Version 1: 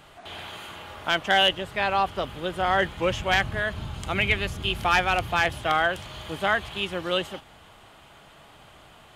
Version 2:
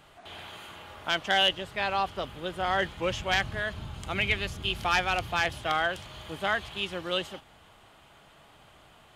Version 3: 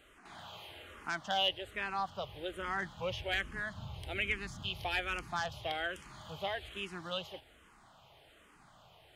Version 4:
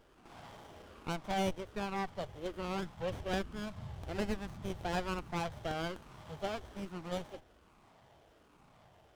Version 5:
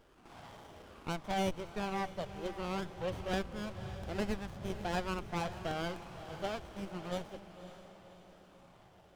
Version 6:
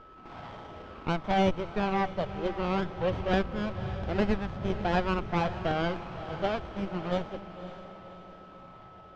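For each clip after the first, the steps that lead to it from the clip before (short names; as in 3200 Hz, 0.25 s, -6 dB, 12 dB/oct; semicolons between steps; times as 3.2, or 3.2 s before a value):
dynamic EQ 4900 Hz, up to +5 dB, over -40 dBFS, Q 0.99; gain -5 dB
in parallel at -2 dB: compressor, threshold -35 dBFS, peak gain reduction 14.5 dB; on the sum: endless phaser -1.2 Hz; gain -7.5 dB
running maximum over 17 samples
diffused feedback echo 0.562 s, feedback 49%, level -12 dB
whine 1300 Hz -59 dBFS; air absorption 190 m; gain +9 dB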